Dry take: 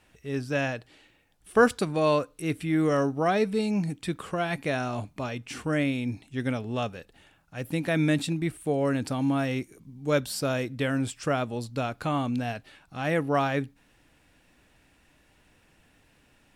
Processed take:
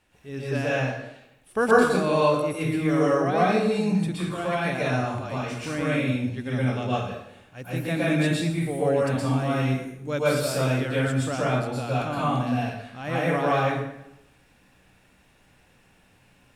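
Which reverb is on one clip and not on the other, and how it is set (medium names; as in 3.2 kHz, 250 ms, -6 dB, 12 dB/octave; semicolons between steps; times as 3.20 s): plate-style reverb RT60 0.84 s, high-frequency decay 0.75×, pre-delay 105 ms, DRR -8 dB; trim -5 dB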